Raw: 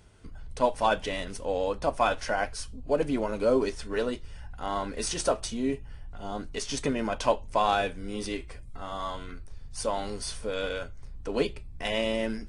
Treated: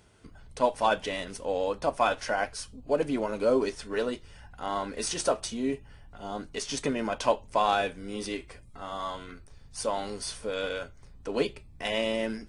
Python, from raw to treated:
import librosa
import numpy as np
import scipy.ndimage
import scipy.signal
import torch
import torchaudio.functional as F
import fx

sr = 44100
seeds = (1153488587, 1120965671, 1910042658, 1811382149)

y = fx.low_shelf(x, sr, hz=77.0, db=-12.0)